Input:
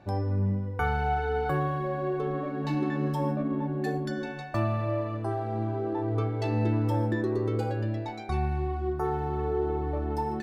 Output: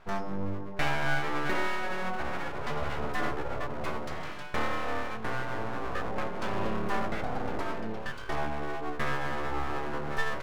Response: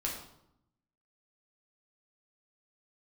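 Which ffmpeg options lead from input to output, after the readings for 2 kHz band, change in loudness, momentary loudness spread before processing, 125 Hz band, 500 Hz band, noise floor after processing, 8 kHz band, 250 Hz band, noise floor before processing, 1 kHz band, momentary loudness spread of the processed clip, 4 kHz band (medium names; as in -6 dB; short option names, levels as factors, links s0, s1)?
+5.5 dB, -4.0 dB, 4 LU, -11.5 dB, -5.0 dB, -36 dBFS, no reading, -7.5 dB, -36 dBFS, -1.0 dB, 6 LU, +7.5 dB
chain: -af "equalizer=f=980:t=o:w=1.1:g=10,aeval=exprs='abs(val(0))':c=same,volume=0.708"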